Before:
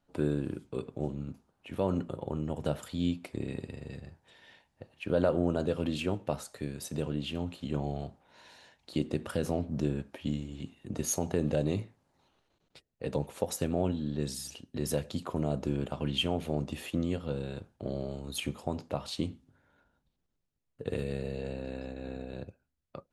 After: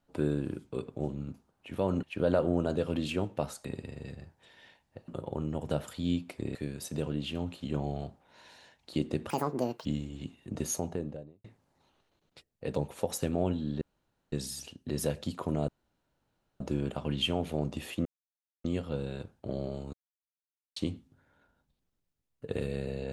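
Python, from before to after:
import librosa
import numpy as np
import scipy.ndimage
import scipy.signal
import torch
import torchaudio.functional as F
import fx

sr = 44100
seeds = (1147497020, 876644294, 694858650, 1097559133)

y = fx.studio_fade_out(x, sr, start_s=10.95, length_s=0.88)
y = fx.edit(y, sr, fx.swap(start_s=2.03, length_s=1.47, other_s=4.93, other_length_s=1.62),
    fx.speed_span(start_s=9.3, length_s=0.94, speed=1.7),
    fx.insert_room_tone(at_s=14.2, length_s=0.51),
    fx.insert_room_tone(at_s=15.56, length_s=0.92),
    fx.insert_silence(at_s=17.01, length_s=0.59),
    fx.silence(start_s=18.3, length_s=0.83), tone=tone)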